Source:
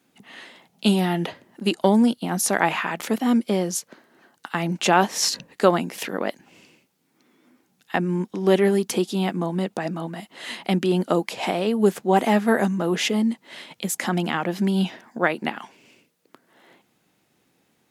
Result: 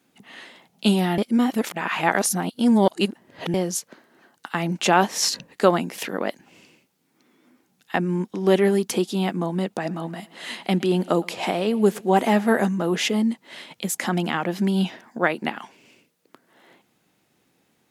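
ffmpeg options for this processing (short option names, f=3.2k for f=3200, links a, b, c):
-filter_complex "[0:a]asettb=1/sr,asplit=3[a][b][c];[a]atrim=end=9.774[d];[b]atrim=start=9.77:end=12.69,asetpts=PTS-STARTPTS,afade=t=in:d=0.004:c=qsin,afade=t=out:st=2.916:d=0.004:c=qsin,aecho=1:1:115|230|345|460:0.0668|0.0401|0.0241|0.0144,atrim=end_sample=128772[e];[c]atrim=start=12.686[f];[d][e]acrossfade=d=0.004:c1=hsin:c2=qsin[g];[g][f]acrossfade=d=0.004:c1=qsin:c2=hsin,asplit=3[h][i][j];[h]atrim=end=1.182[k];[i]atrim=start=1.178:end=3.542,asetpts=PTS-STARTPTS,areverse[l];[j]atrim=start=3.538[m];[k][l]acrossfade=d=0.004:c1=hsin:c2=hsin[n];[n][m]acrossfade=d=0.004:c1=hsin:c2=hsin"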